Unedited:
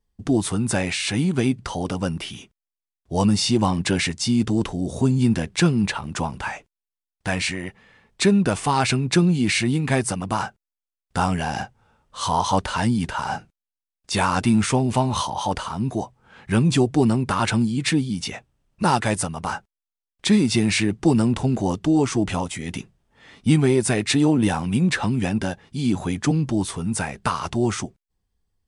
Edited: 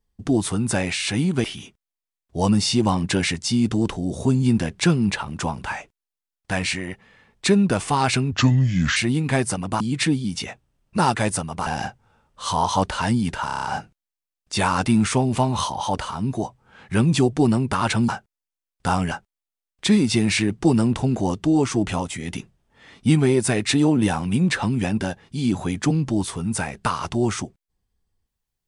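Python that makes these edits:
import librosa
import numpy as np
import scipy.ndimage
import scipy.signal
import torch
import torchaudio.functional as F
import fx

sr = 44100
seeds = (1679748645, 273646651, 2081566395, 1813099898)

y = fx.edit(x, sr, fx.cut(start_s=1.44, length_s=0.76),
    fx.speed_span(start_s=9.08, length_s=0.47, speed=0.73),
    fx.swap(start_s=10.39, length_s=1.03, other_s=17.66, other_length_s=1.86),
    fx.stutter(start_s=13.21, slice_s=0.03, count=7), tone=tone)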